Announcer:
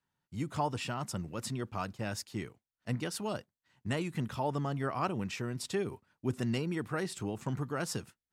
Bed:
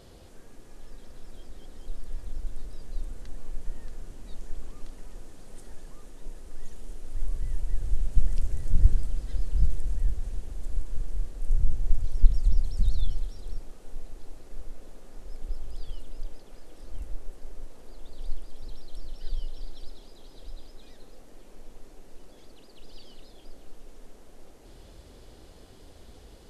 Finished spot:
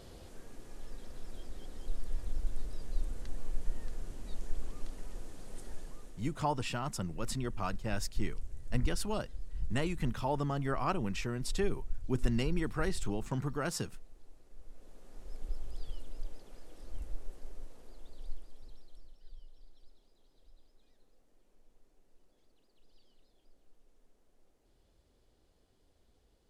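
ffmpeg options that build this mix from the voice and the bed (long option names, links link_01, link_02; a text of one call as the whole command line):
ffmpeg -i stem1.wav -i stem2.wav -filter_complex "[0:a]adelay=5850,volume=0dB[link_01];[1:a]volume=9.5dB,afade=type=out:start_time=5.75:duration=0.75:silence=0.199526,afade=type=in:start_time=14.57:duration=0.78:silence=0.316228,afade=type=out:start_time=17.36:duration=1.84:silence=0.16788[link_02];[link_01][link_02]amix=inputs=2:normalize=0" out.wav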